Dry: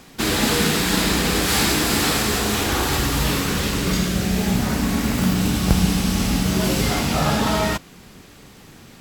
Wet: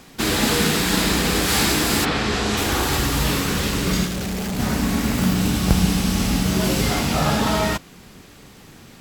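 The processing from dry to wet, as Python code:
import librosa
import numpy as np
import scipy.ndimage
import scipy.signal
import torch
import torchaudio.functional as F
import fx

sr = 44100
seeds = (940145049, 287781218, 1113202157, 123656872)

y = fx.lowpass(x, sr, hz=fx.line((2.04, 3000.0), (2.56, 7500.0)), slope=12, at=(2.04, 2.56), fade=0.02)
y = fx.clip_hard(y, sr, threshold_db=-23.5, at=(4.05, 4.58), fade=0.02)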